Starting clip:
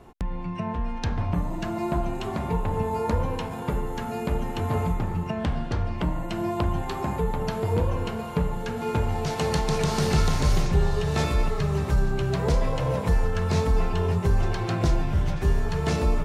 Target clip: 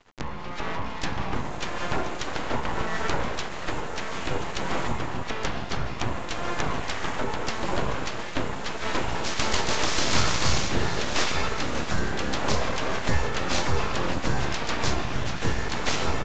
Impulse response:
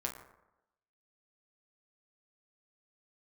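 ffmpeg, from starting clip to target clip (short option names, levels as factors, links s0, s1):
-filter_complex "[0:a]tiltshelf=f=860:g=-6,aeval=exprs='sgn(val(0))*max(abs(val(0))-0.00355,0)':c=same,asplit=3[s0][s1][s2];[s1]asetrate=22050,aresample=44100,atempo=2,volume=0.355[s3];[s2]asetrate=52444,aresample=44100,atempo=0.840896,volume=0.316[s4];[s0][s3][s4]amix=inputs=3:normalize=0,aeval=exprs='abs(val(0))':c=same,aresample=16000,aresample=44100,areverse,acompressor=mode=upward:threshold=0.0126:ratio=2.5,areverse,volume=1.58"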